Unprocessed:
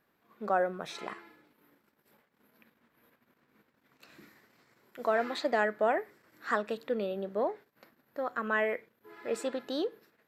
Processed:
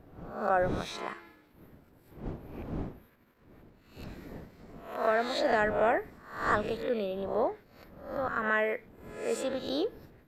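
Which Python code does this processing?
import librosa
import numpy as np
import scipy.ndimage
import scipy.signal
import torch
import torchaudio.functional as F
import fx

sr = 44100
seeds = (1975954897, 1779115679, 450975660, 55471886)

y = fx.spec_swells(x, sr, rise_s=0.57)
y = fx.dmg_wind(y, sr, seeds[0], corner_hz=320.0, level_db=-45.0)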